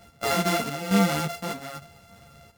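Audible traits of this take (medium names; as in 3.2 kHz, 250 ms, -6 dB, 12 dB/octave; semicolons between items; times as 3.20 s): a buzz of ramps at a fixed pitch in blocks of 64 samples; chopped level 1.1 Hz, depth 65%, duty 75%; a shimmering, thickened sound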